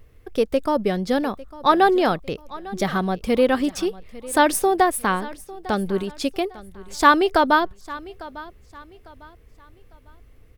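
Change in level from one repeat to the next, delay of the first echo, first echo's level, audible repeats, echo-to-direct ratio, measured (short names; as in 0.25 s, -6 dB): -10.0 dB, 0.851 s, -19.0 dB, 2, -18.5 dB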